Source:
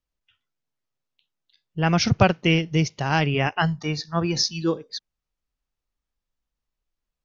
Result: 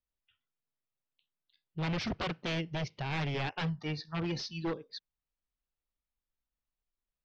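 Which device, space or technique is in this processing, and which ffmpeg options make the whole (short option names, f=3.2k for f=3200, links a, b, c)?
synthesiser wavefolder: -af "aeval=exprs='0.106*(abs(mod(val(0)/0.106+3,4)-2)-1)':c=same,lowpass=f=4.5k:w=0.5412,lowpass=f=4.5k:w=1.3066,volume=-8.5dB"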